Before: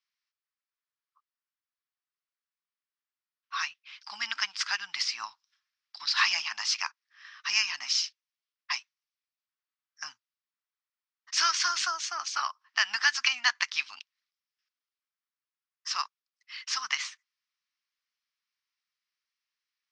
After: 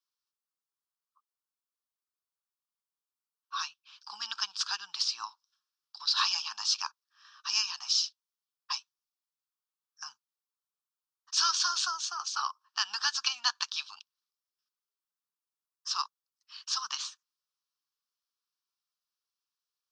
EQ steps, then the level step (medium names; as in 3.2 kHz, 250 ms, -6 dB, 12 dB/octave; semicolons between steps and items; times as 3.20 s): dynamic bell 3.8 kHz, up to +6 dB, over -43 dBFS, Q 2.4; bass shelf 200 Hz -12 dB; static phaser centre 410 Hz, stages 8; 0.0 dB